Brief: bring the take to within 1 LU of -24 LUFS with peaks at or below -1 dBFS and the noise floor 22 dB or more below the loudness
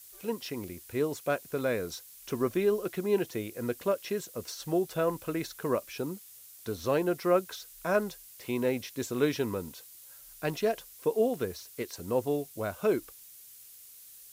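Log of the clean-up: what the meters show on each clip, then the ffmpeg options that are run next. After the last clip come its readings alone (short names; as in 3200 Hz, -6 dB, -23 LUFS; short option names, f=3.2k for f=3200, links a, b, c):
noise floor -52 dBFS; noise floor target -54 dBFS; loudness -32.0 LUFS; peak -14.0 dBFS; loudness target -24.0 LUFS
-> -af "afftdn=nr=6:nf=-52"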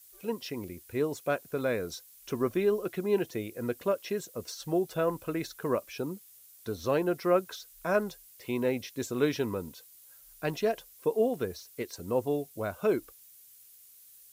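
noise floor -56 dBFS; loudness -32.0 LUFS; peak -14.0 dBFS; loudness target -24.0 LUFS
-> -af "volume=8dB"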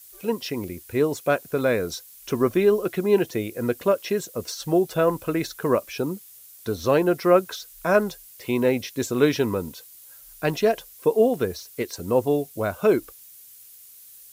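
loudness -24.0 LUFS; peak -6.0 dBFS; noise floor -48 dBFS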